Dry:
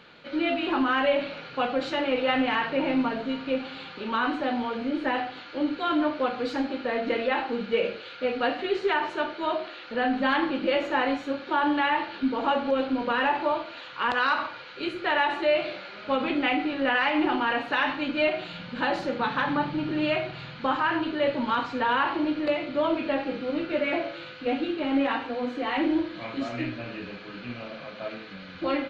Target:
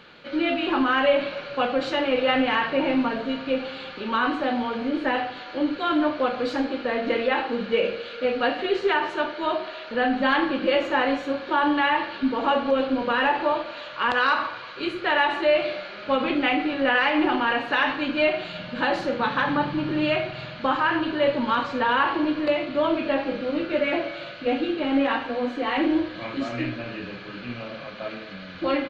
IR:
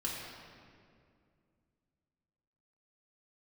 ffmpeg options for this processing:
-filter_complex "[0:a]asplit=2[a][b];[b]aecho=1:1:1.8:0.82[c];[1:a]atrim=start_sample=2205[d];[c][d]afir=irnorm=-1:irlink=0,volume=-17dB[e];[a][e]amix=inputs=2:normalize=0,volume=2dB"

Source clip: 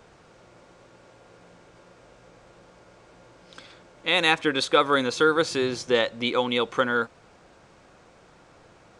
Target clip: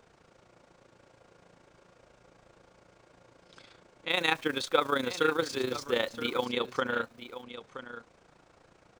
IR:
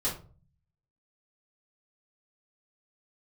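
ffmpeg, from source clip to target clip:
-filter_complex "[0:a]asettb=1/sr,asplit=3[a][b][c];[a]atrim=end=4.104[d];[b]atrim=start=4.1:end=6.46,asetpts=PTS-STARTPTS,afade=t=in:d=0.004:c=qsin,afade=t=out:st=2.356:d=0.004:c=qsin,acrusher=bits=8:dc=4:mix=0:aa=0.000001[e];[c]atrim=start=6.456[f];[d][e]acrossfade=d=0.004:c1=hsin:c2=qsin[g];[g][f]acrossfade=d=0.004:c1=qsin:c2=hsin,tremolo=f=28:d=0.71,aecho=1:1:973:0.237,volume=-4dB"

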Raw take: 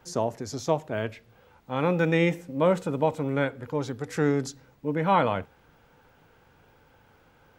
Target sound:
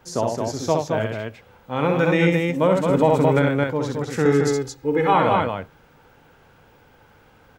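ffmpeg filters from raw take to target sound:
-filter_complex "[0:a]asettb=1/sr,asplit=3[a][b][c];[a]atrim=end=2.904[d];[b]atrim=start=2.9:end=3.42,asetpts=PTS-STARTPTS,afade=t=in:d=0.004:c=qsin,afade=t=out:st=0.516:d=0.004:c=qsin,acontrast=49[e];[c]atrim=start=3.416[f];[d][e]acrossfade=d=0.004:c1=hsin:c2=qsin[g];[g][f]acrossfade=d=0.004:c1=qsin:c2=hsin,asettb=1/sr,asplit=3[h][i][j];[h]atrim=end=4.254[k];[i]atrim=start=4.25:end=5.14,asetpts=PTS-STARTPTS,afade=t=in:d=0.004:c=qsin,afade=t=out:st=0.886:d=0.004:c=qsin,aecho=1:1:2.4:0.82,atrim=end_sample=39249[l];[j]atrim=start=5.136[m];[k][l]acrossfade=d=0.004:c1=hsin:c2=qsin[n];[n][m]acrossfade=d=0.004:c1=qsin:c2=hsin,aecho=1:1:64.14|218.7:0.631|0.631,alimiter=level_in=9dB:limit=-1dB:release=50:level=0:latency=1,volume=-5.5dB"

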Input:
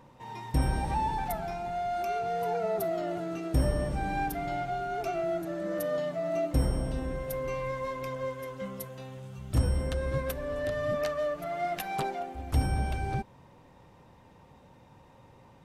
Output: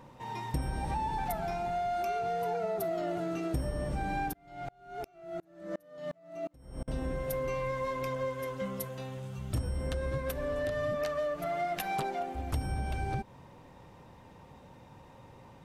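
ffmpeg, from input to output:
-filter_complex "[0:a]acompressor=threshold=-32dB:ratio=6,asettb=1/sr,asplit=3[a][b][c];[a]atrim=end=4.334[d];[b]atrim=start=4.33:end=6.88,asetpts=PTS-STARTPTS,afade=t=in:d=0.004:c=qsin,afade=t=out:st=2.546:d=0.004:c=qsin,aeval=exprs='val(0)*pow(10,-35*if(lt(mod(-2.8*n/s,1),2*abs(-2.8)/1000),1-mod(-2.8*n/s,1)/(2*abs(-2.8)/1000),(mod(-2.8*n/s,1)-2*abs(-2.8)/1000)/(1-2*abs(-2.8)/1000))/20)':c=same[e];[c]atrim=start=6.876[f];[d][e]acrossfade=d=0.004:c1=hsin:c2=qsin[g];[g][f]acrossfade=d=0.004:c1=qsin:c2=hsin,volume=2.5dB"

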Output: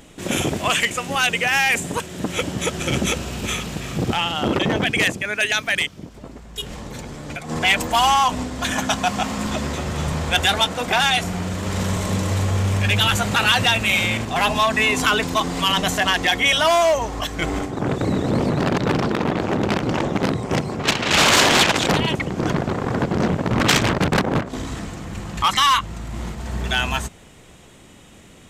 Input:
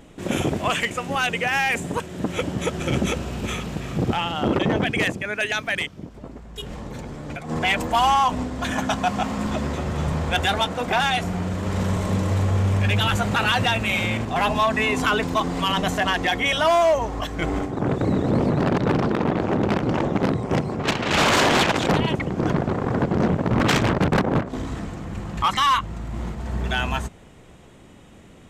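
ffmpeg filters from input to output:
-af "highshelf=f=2.3k:g=9.5"

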